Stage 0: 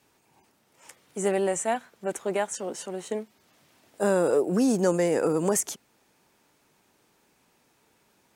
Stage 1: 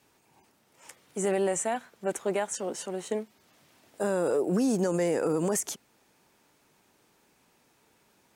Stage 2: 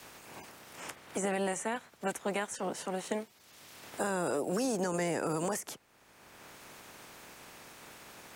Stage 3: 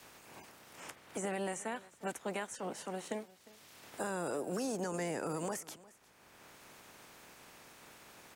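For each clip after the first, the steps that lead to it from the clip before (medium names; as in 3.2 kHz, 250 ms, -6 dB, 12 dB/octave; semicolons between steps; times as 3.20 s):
peak limiter -18.5 dBFS, peak gain reduction 7.5 dB
spectral peaks clipped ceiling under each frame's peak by 12 dB; three bands compressed up and down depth 70%; trim -5 dB
delay 354 ms -21 dB; trim -5 dB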